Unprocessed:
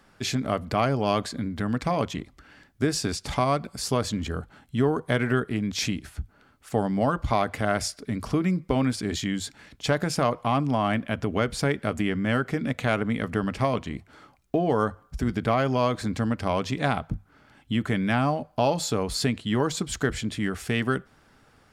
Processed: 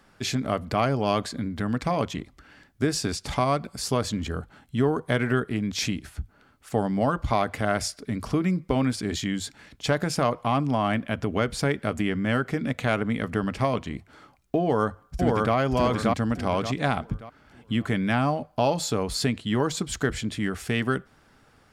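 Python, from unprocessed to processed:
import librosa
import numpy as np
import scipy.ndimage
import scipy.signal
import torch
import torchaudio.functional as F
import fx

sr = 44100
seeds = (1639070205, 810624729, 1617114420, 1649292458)

y = fx.echo_throw(x, sr, start_s=14.61, length_s=0.94, ms=580, feedback_pct=35, wet_db=-1.0)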